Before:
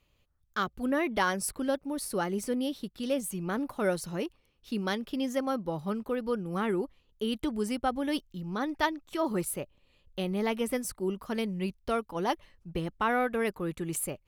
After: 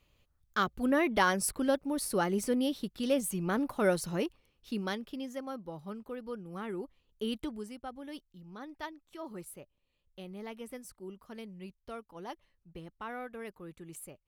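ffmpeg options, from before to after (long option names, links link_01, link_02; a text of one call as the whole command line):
ffmpeg -i in.wav -af "volume=7.5dB,afade=type=out:start_time=4.23:duration=1.06:silence=0.298538,afade=type=in:start_time=6.69:duration=0.59:silence=0.473151,afade=type=out:start_time=7.28:duration=0.41:silence=0.298538" out.wav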